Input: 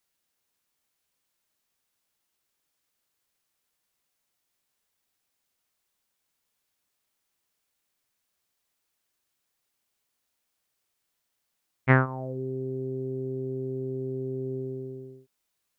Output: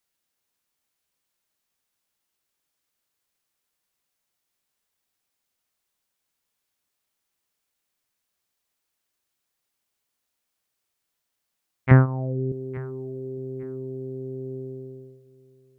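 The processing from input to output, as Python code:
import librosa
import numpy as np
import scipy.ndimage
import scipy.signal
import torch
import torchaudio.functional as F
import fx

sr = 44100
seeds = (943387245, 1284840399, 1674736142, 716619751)

y = fx.tilt_eq(x, sr, slope=-3.5, at=(11.91, 12.52))
y = fx.echo_feedback(y, sr, ms=858, feedback_pct=25, wet_db=-20.5)
y = y * librosa.db_to_amplitude(-1.0)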